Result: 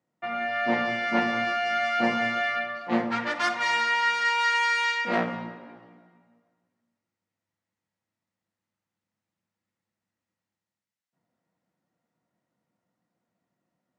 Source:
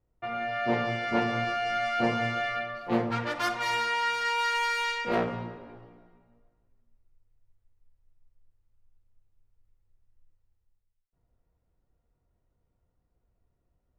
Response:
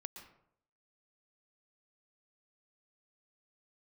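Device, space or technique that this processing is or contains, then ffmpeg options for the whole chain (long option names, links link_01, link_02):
television speaker: -af "highpass=frequency=170:width=0.5412,highpass=frequency=170:width=1.3066,equalizer=frequency=190:width_type=q:width=4:gain=4,equalizer=frequency=420:width_type=q:width=4:gain=-10,equalizer=frequency=1900:width_type=q:width=4:gain=5,lowpass=frequency=8400:width=0.5412,lowpass=frequency=8400:width=1.3066,volume=2.5dB"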